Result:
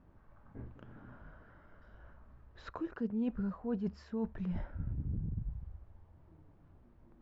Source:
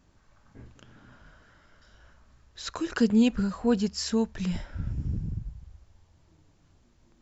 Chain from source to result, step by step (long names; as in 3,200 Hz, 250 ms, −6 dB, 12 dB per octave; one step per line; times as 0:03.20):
low-pass filter 1,300 Hz 12 dB per octave
reversed playback
downward compressor 4 to 1, threshold −36 dBFS, peak gain reduction 16 dB
reversed playback
level +1 dB